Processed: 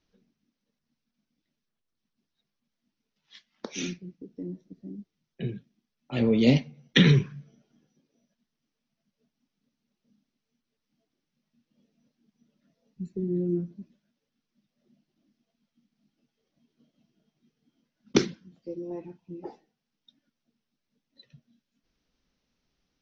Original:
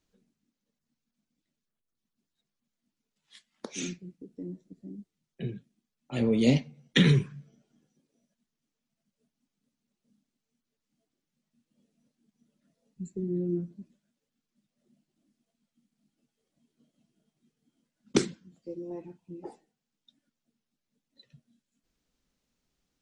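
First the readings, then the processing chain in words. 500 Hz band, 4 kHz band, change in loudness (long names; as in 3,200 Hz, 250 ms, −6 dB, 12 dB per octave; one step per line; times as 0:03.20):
+2.5 dB, +3.0 dB, +2.5 dB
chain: elliptic low-pass filter 5,900 Hz, stop band 40 dB
level +3.5 dB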